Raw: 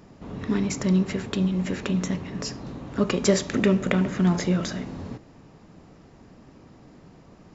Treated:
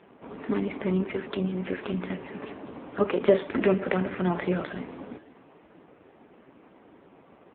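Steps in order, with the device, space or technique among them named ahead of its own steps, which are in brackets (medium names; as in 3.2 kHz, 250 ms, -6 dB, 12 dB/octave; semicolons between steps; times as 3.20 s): satellite phone (band-pass 330–3300 Hz; delay 487 ms -22 dB; trim +4 dB; AMR-NB 5.15 kbps 8 kHz)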